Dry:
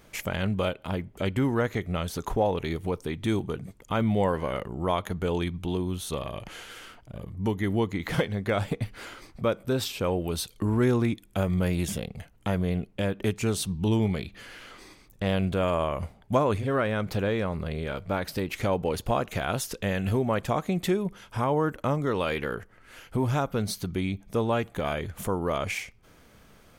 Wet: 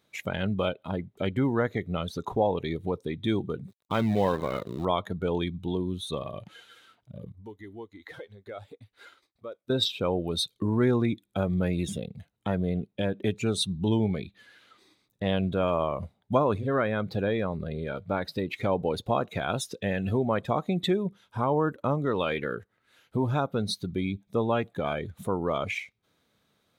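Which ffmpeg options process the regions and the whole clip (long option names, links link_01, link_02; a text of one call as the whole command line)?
ffmpeg -i in.wav -filter_complex "[0:a]asettb=1/sr,asplit=3[link_01][link_02][link_03];[link_01]atrim=end=3.684[link_04];[link_02]atrim=start=3.68:end=4.85,asetpts=PTS-STARTPTS,afade=type=in:duration=0.004:curve=qsin,afade=type=out:start_time=1.166:duration=0.004:curve=qsin,agate=range=-13dB:threshold=-50dB:ratio=16:release=100:detection=peak,acrusher=bits=6:dc=4:mix=0:aa=0.000001[link_05];[link_03]atrim=start=4.846[link_06];[link_04][link_05]acrossfade=duration=0.004:curve1=hsin:curve2=qsin[link_07];[link_07][link_06]acrossfade=duration=0.004:curve1=qsin:curve2=hsin,asettb=1/sr,asplit=3[link_08][link_09][link_10];[link_08]atrim=end=7.324[link_11];[link_09]atrim=start=7.32:end=9.7,asetpts=PTS-STARTPTS,afade=type=in:duration=0.004:curve=qsin,afade=type=out:start_time=2.376:duration=0.004:curve=qsin,acompressor=threshold=-35dB:ratio=3:attack=3.2:release=140:knee=1:detection=peak,equalizer=frequency=160:width_type=o:width=1:gain=-15,agate=range=-33dB:threshold=-42dB:ratio=3:release=100:detection=peak[link_12];[link_10]atrim=start=9.696[link_13];[link_11][link_12]acrossfade=duration=0.004:curve1=hsin:curve2=qsin[link_14];[link_14][link_13]acrossfade=duration=0.004:curve1=qsin:curve2=hsin,highpass=100,afftdn=noise_reduction=15:noise_floor=-35,equalizer=frequency=3800:width_type=o:width=0.22:gain=14" out.wav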